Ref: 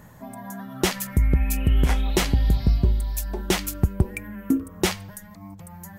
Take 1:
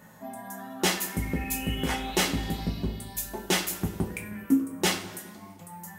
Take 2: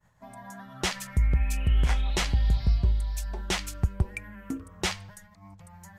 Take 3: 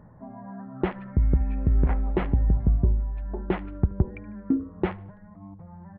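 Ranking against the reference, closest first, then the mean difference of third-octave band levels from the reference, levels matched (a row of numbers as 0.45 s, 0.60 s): 2, 1, 3; 4.0 dB, 5.5 dB, 9.5 dB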